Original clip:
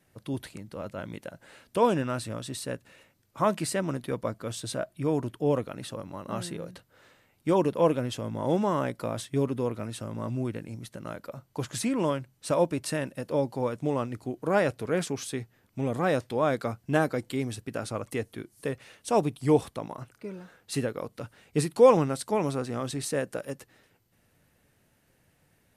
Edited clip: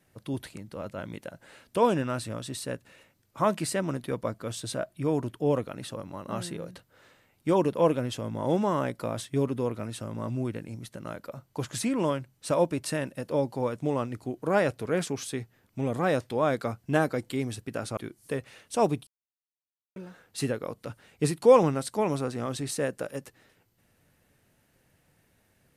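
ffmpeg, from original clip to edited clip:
-filter_complex "[0:a]asplit=4[a][b][c][d];[a]atrim=end=17.972[e];[b]atrim=start=18.308:end=19.41,asetpts=PTS-STARTPTS,afade=t=out:st=1.098:d=0.004:c=hsin[f];[c]atrim=start=19.41:end=20.3,asetpts=PTS-STARTPTS,volume=0[g];[d]atrim=start=20.3,asetpts=PTS-STARTPTS,afade=t=in:d=0.004:c=hsin[h];[f][g][h]concat=n=3:v=0:a=1[i];[e][i]acrossfade=d=0.004:c1=hsin:c2=hsin"

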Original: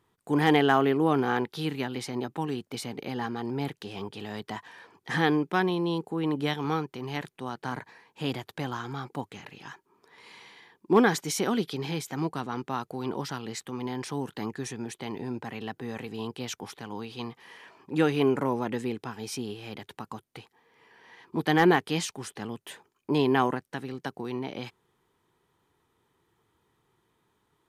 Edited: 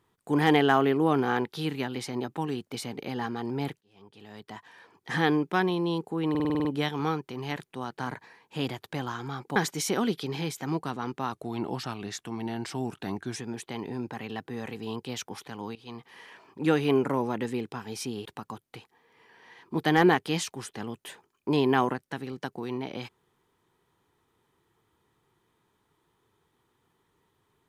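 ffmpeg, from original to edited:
-filter_complex "[0:a]asplit=14[a][b][c][d][e][f][g][h][i][j][k][l][m][n];[a]atrim=end=3.81,asetpts=PTS-STARTPTS,afade=t=out:st=3.806:d=0.004:c=hsin[o];[b]atrim=start=3.81:end=6.352,asetpts=PTS-STARTPTS,afade=t=in:d=1.49[p];[c]atrim=start=6.298:end=6.352[q];[d]atrim=start=6.298:end=6.352[r];[e]atrim=start=6.298:end=6.352[s];[f]atrim=start=6.298:end=6.352[t];[g]atrim=start=6.298:end=6.352[u];[h]atrim=start=6.298:end=6.352[v];[i]atrim=start=6.298:end=9.212[w];[j]atrim=start=11.058:end=12.824[x];[k]atrim=start=12.82:end=14.68,asetpts=PTS-STARTPTS,asetrate=40131,aresample=44100,atrim=end_sample=90138,asetpts=PTS-STARTPTS[y];[l]atrim=start=14.676:end=17.07,asetpts=PTS-STARTPTS,afade=t=out:st=2.39:d=0.004:c=hsin:silence=0.177828[z];[m]atrim=start=17.07:end=19.572,asetpts=PTS-STARTPTS,afade=t=in:d=0.38:silence=0.177828[aa];[n]atrim=start=19.868[ab];[o][p]concat=n=2:v=0:a=1[ac];[ac][q]acrossfade=d=0.004:c1=hsin:c2=hsin[ad];[ad][r]acrossfade=d=0.004:c1=hsin:c2=hsin[ae];[ae][s]acrossfade=d=0.004:c1=hsin:c2=hsin[af];[af][t]acrossfade=d=0.004:c1=hsin:c2=hsin[ag];[ag][u]acrossfade=d=0.004:c1=hsin:c2=hsin[ah];[ah][v]acrossfade=d=0.004:c1=hsin:c2=hsin[ai];[ai][w]acrossfade=d=0.004:c1=hsin:c2=hsin[aj];[aj][x]acrossfade=d=0.004:c1=hsin:c2=hsin[ak];[ak][y]acrossfade=d=0.004:c1=hsin:c2=hsin[al];[z][aa]concat=n=2:v=0:a=1[am];[al][am]acrossfade=d=0.004:c1=hsin:c2=hsin[an];[an][ab]acrossfade=d=0.004:c1=hsin:c2=hsin"

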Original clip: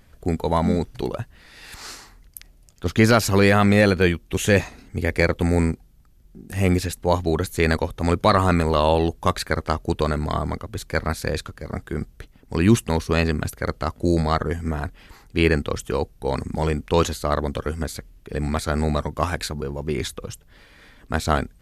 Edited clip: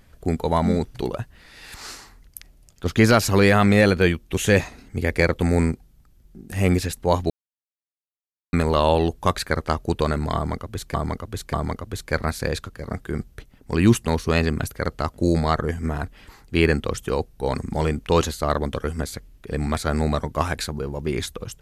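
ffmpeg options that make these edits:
-filter_complex "[0:a]asplit=5[a][b][c][d][e];[a]atrim=end=7.3,asetpts=PTS-STARTPTS,afade=t=out:st=7.296:d=0.004:c=hsin[f];[b]atrim=start=7.3:end=8.53,asetpts=PTS-STARTPTS,volume=0[g];[c]atrim=start=8.53:end=10.942,asetpts=PTS-STARTPTS,afade=t=in:d=0.004:c=hsin[h];[d]atrim=start=10.348:end=10.942[i];[e]atrim=start=10.348[j];[f][g][h]concat=n=3:v=0:a=1[k];[k][i]acrossfade=d=0.004:c1=hsin:c2=hsin[l];[l][j]acrossfade=d=0.004:c1=hsin:c2=hsin"

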